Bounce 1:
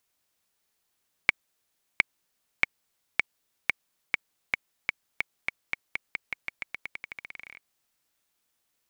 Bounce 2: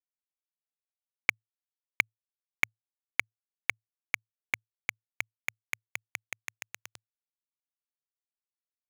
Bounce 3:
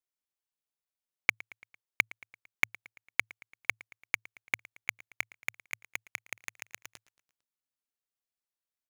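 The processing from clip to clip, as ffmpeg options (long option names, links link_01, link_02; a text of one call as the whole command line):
ffmpeg -i in.wav -af "aeval=exprs='val(0)*gte(abs(val(0)),0.0794)':channel_layout=same,equalizer=frequency=110:width=6.4:gain=6.5,volume=-2dB" out.wav
ffmpeg -i in.wav -af "aecho=1:1:113|226|339|452:0.0841|0.048|0.0273|0.0156" out.wav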